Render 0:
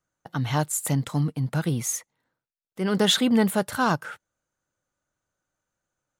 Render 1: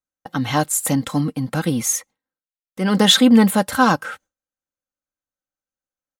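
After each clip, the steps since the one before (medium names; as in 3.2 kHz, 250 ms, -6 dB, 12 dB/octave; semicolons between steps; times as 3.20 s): gate with hold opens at -48 dBFS; comb 3.8 ms, depth 55%; trim +6 dB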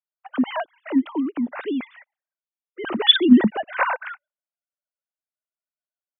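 formants replaced by sine waves; trim -3.5 dB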